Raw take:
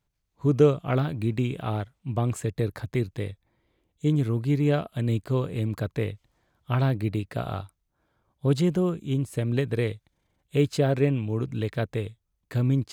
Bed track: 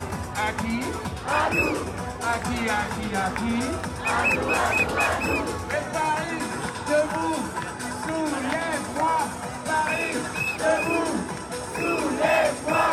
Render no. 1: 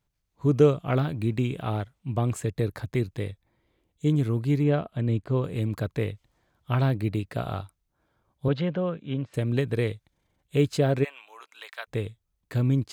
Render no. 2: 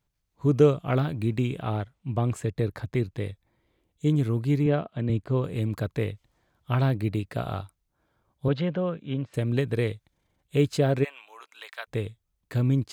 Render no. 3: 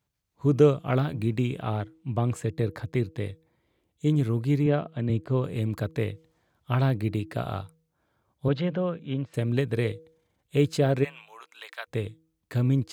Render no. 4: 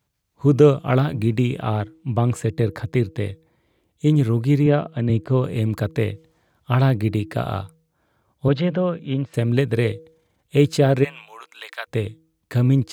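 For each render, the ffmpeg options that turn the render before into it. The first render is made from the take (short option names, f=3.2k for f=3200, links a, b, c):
-filter_complex "[0:a]asettb=1/sr,asplit=3[a][b][c];[a]atrim=end=4.634[d];[b]atrim=start=4.63:end=5.44,asetpts=PTS-STARTPTS,afade=t=in:d=0.004:c=qsin,afade=t=out:st=0.806:d=0.004:c=qsin,aemphasis=mode=reproduction:type=75kf[e];[c]atrim=start=5.436[f];[d][e]acrossfade=d=0.004:c1=hsin:c2=qsin[g];[g][f]acrossfade=d=0.004:c1=qsin:c2=hsin,asettb=1/sr,asplit=3[h][i][j];[h]atrim=end=8.484[k];[i]atrim=start=8.48:end=9.34,asetpts=PTS-STARTPTS,afade=t=in:d=0.004:c=qsin,afade=t=out:st=0.856:d=0.004:c=qsin,highpass=150,equalizer=f=200:t=q:w=4:g=-4,equalizer=f=360:t=q:w=4:g=-9,equalizer=f=530:t=q:w=4:g=6,equalizer=f=1.6k:t=q:w=4:g=5,lowpass=f=3.7k:w=0.5412,lowpass=f=3.7k:w=1.3066[l];[j]atrim=start=9.336[m];[k][l]acrossfade=d=0.004:c1=hsin:c2=qsin[n];[n][m]acrossfade=d=0.004:c1=qsin:c2=hsin,asplit=3[o][p][q];[o]afade=t=out:st=11.03:d=0.02[r];[p]highpass=f=860:w=0.5412,highpass=f=860:w=1.3066,afade=t=in:st=11.03:d=0.02,afade=t=out:st=11.87:d=0.02[s];[q]afade=t=in:st=11.87:d=0.02[t];[r][s][t]amix=inputs=3:normalize=0"
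-filter_complex "[0:a]asettb=1/sr,asplit=3[a][b][c];[a]atrim=end=1.584[d];[b]atrim=start=1.58:end=3.24,asetpts=PTS-STARTPTS,afade=t=in:d=0.004:c=qsin,afade=t=out:st=1.656:d=0.004:c=qsin,highshelf=f=6k:g=-6.5[e];[c]atrim=start=3.236[f];[d][e]acrossfade=d=0.004:c1=hsin:c2=qsin[g];[g][f]acrossfade=d=0.004:c1=qsin:c2=hsin,asettb=1/sr,asplit=3[h][i][j];[h]atrim=end=4.664[k];[i]atrim=start=4.66:end=5.1,asetpts=PTS-STARTPTS,afade=t=in:d=0.004:c=qsin,afade=t=out:st=0.436:d=0.004:c=qsin,highpass=110,lowpass=5.8k[l];[j]atrim=start=5.096[m];[k][l]acrossfade=d=0.004:c1=hsin:c2=qsin[n];[n][m]acrossfade=d=0.004:c1=qsin:c2=hsin"
-af "highpass=62,bandreject=f=160.5:t=h:w=4,bandreject=f=321:t=h:w=4,bandreject=f=481.5:t=h:w=4"
-af "volume=6.5dB,alimiter=limit=-3dB:level=0:latency=1"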